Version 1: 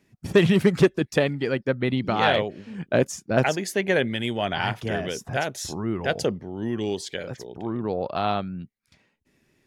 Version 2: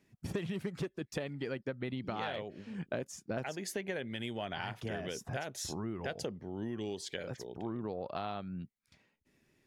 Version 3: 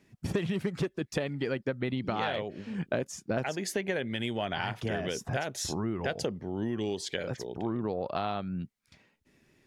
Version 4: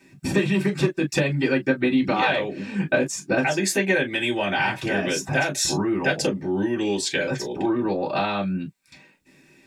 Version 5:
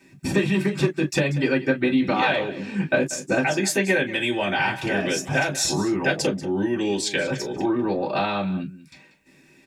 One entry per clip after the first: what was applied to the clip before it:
compression 10:1, threshold -28 dBFS, peak gain reduction 16.5 dB; trim -6 dB
treble shelf 12 kHz -6.5 dB; trim +6.5 dB
reverberation, pre-delay 3 ms, DRR -5 dB; trim +8 dB
delay 188 ms -16 dB

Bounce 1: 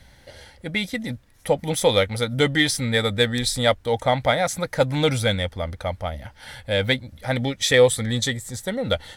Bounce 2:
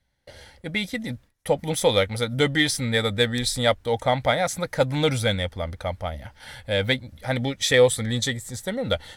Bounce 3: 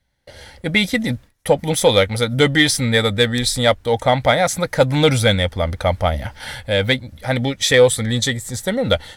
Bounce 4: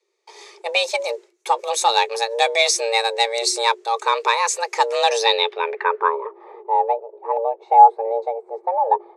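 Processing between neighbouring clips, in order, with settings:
gate with hold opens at -38 dBFS; trim -1.5 dB
in parallel at -5 dB: saturation -13.5 dBFS, distortion -15 dB; on the sum: level rider gain up to 11.5 dB; trim -1 dB
low-pass sweep 6.8 kHz -> 470 Hz, 5.08–6.44 s; frequency shift +340 Hz; trim -4 dB

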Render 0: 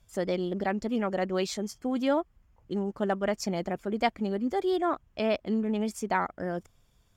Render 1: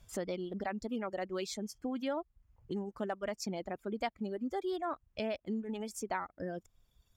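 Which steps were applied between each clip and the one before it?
reverb removal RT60 1.8 s; compression 2:1, threshold -45 dBFS, peak gain reduction 13.5 dB; trim +3 dB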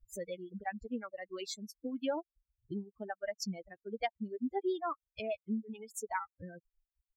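expander on every frequency bin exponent 3; trim +5 dB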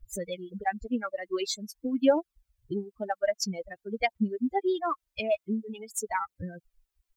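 phaser 0.48 Hz, delay 3.7 ms, feedback 47%; trim +8 dB

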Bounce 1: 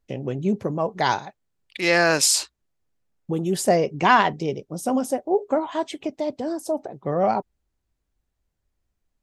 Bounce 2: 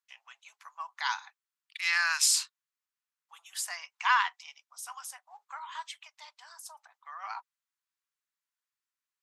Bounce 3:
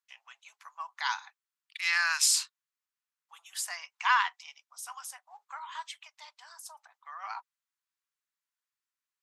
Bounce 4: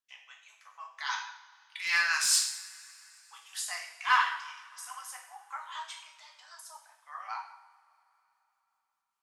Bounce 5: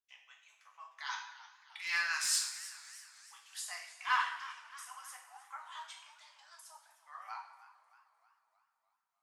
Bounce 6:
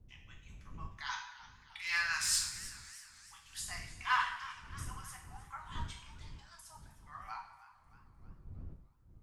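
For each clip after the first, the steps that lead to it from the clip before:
steep high-pass 1 kHz 48 dB/octave; trim -5.5 dB
no audible change
overload inside the chain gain 17 dB; rotary cabinet horn 5 Hz; two-slope reverb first 0.67 s, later 3.4 s, from -21 dB, DRR 0 dB
modulated delay 309 ms, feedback 53%, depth 124 cents, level -16.5 dB; trim -6.5 dB
wind noise 87 Hz -51 dBFS

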